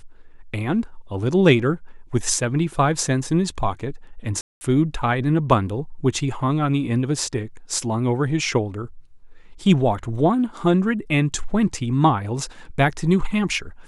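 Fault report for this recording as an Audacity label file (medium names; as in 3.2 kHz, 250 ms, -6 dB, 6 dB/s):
4.410000	4.610000	dropout 200 ms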